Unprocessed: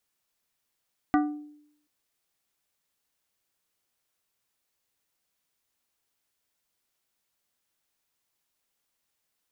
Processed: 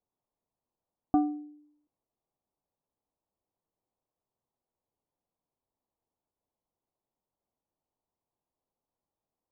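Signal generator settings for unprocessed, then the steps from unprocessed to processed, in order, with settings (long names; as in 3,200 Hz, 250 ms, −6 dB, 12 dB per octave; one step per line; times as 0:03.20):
struck glass plate, length 0.73 s, lowest mode 297 Hz, decay 0.74 s, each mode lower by 4 dB, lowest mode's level −18 dB
Butterworth low-pass 1,000 Hz 36 dB per octave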